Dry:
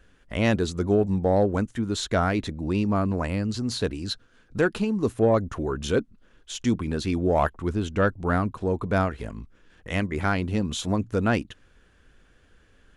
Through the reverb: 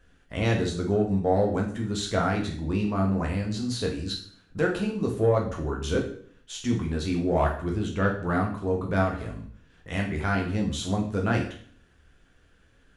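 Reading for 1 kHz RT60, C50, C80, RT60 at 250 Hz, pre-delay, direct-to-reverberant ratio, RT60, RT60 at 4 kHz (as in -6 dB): 0.55 s, 7.0 dB, 11.0 dB, 0.65 s, 8 ms, 0.0 dB, 0.55 s, 0.50 s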